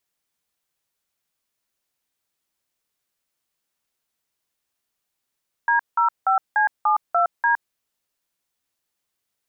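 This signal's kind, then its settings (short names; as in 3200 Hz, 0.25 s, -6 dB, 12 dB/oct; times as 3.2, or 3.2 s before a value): DTMF "D05C72D", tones 0.114 s, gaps 0.179 s, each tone -18 dBFS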